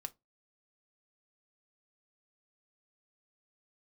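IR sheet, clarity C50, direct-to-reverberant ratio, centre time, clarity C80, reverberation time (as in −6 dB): 25.5 dB, 7.0 dB, 3 ms, 36.5 dB, 0.20 s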